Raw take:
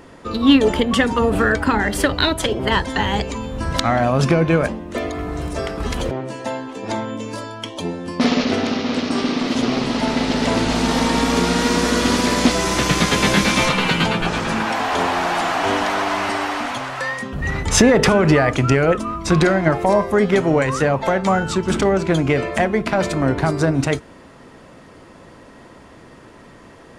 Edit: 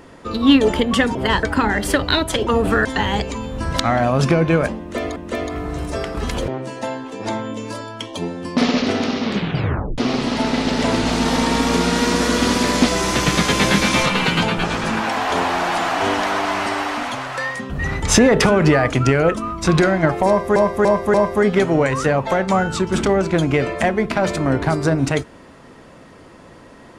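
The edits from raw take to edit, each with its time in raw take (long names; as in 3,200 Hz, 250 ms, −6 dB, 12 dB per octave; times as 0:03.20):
0:01.15–0:01.53: swap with 0:02.57–0:02.85
0:04.79–0:05.16: repeat, 2 plays
0:08.85: tape stop 0.76 s
0:19.90–0:20.19: repeat, 4 plays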